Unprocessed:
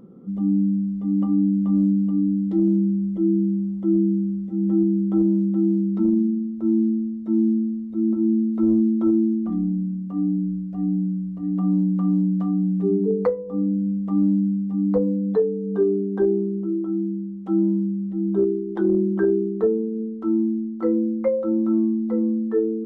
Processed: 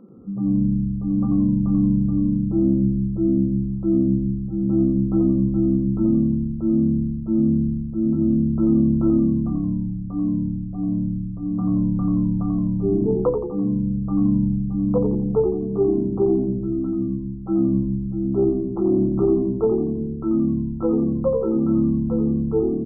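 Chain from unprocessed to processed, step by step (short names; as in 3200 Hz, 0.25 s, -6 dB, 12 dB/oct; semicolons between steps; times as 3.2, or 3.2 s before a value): tracing distortion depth 0.12 ms; brick-wall FIR band-pass 170–1400 Hz; on a send: frequency-shifting echo 86 ms, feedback 52%, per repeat -70 Hz, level -6 dB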